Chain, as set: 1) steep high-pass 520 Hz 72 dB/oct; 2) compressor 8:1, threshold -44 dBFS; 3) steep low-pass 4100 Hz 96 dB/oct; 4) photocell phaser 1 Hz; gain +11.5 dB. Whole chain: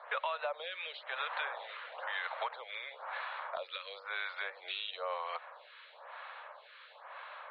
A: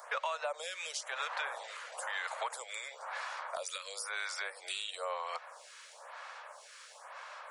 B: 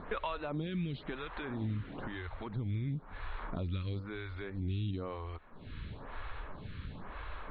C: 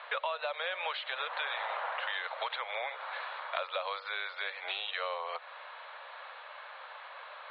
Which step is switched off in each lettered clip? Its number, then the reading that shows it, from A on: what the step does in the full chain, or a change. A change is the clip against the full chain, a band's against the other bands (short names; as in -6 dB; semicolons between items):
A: 3, momentary loudness spread change -1 LU; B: 1, 500 Hz band +7.0 dB; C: 4, crest factor change +2.0 dB